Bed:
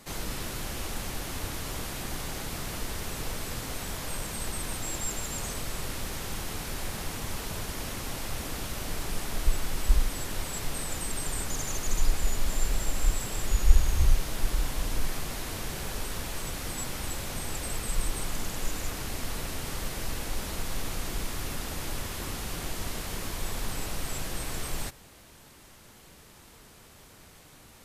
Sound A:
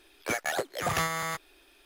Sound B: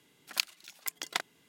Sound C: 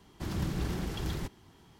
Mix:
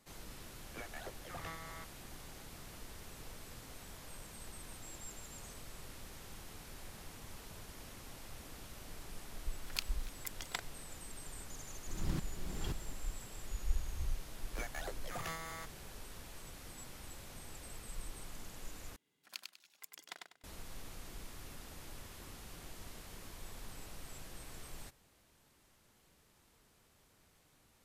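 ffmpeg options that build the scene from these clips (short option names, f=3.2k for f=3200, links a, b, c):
-filter_complex "[1:a]asplit=2[a][b];[2:a]asplit=2[c][d];[0:a]volume=-16dB[e];[a]lowpass=4.5k[f];[3:a]aeval=exprs='val(0)*pow(10,-23*if(lt(mod(-1.9*n/s,1),2*abs(-1.9)/1000),1-mod(-1.9*n/s,1)/(2*abs(-1.9)/1000),(mod(-1.9*n/s,1)-2*abs(-1.9)/1000)/(1-2*abs(-1.9)/1000))/20)':c=same[g];[d]aecho=1:1:98|196|294|392:0.631|0.17|0.046|0.0124[h];[e]asplit=2[i][j];[i]atrim=end=18.964[k];[h]atrim=end=1.48,asetpts=PTS-STARTPTS,volume=-17dB[l];[j]atrim=start=20.436[m];[f]atrim=end=1.85,asetpts=PTS-STARTPTS,volume=-18dB,afade=t=in:d=0.004:c=hsin,afade=t=out:st=1.846:d=0.004:c=hsin,adelay=480[n];[c]atrim=end=1.48,asetpts=PTS-STARTPTS,volume=-8.5dB,afade=t=in:d=0.004:c=hsin,afade=t=out:st=1.476:d=0.004:c=hsin,adelay=9390[o];[g]atrim=end=1.79,asetpts=PTS-STARTPTS,volume=-2.5dB,afade=t=in:d=0.004:c=hsin,afade=t=out:st=1.786:d=0.004:c=hsin,adelay=11670[p];[b]atrim=end=1.85,asetpts=PTS-STARTPTS,volume=-14.5dB,afade=t=in:d=0.004:c=hsin,afade=t=out:st=1.846:d=0.004:c=hsin,adelay=14290[q];[k][l]acrossfade=d=0.004:c1=hsin:c2=hsin[r];[r][m]acrossfade=d=0.004:c1=hsin:c2=hsin[s];[s][n][o][p][q]amix=inputs=5:normalize=0"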